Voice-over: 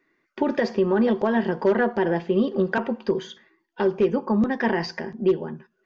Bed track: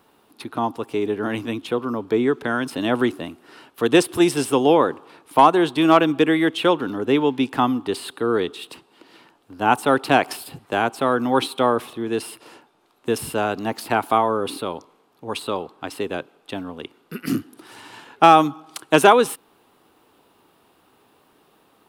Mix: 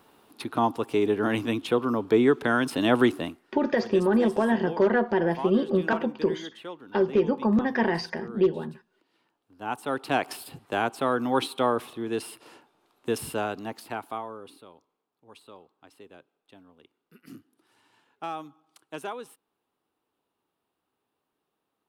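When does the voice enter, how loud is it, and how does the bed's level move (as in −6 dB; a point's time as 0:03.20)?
3.15 s, −1.5 dB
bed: 0:03.28 −0.5 dB
0:03.52 −21.5 dB
0:09.13 −21.5 dB
0:10.41 −5.5 dB
0:13.32 −5.5 dB
0:14.69 −23 dB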